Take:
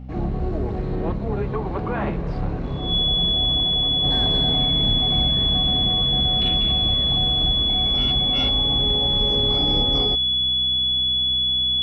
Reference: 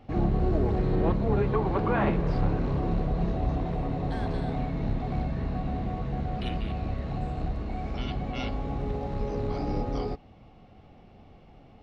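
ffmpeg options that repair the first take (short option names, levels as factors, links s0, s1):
-af "bandreject=f=63.6:t=h:w=4,bandreject=f=127.2:t=h:w=4,bandreject=f=190.8:t=h:w=4,bandreject=f=254.4:t=h:w=4,bandreject=f=3400:w=30,asetnsamples=n=441:p=0,asendcmd='4.04 volume volume -5dB',volume=1"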